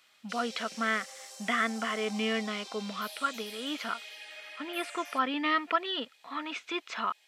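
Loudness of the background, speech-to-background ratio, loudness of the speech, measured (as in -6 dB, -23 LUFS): -44.0 LUFS, 11.5 dB, -32.5 LUFS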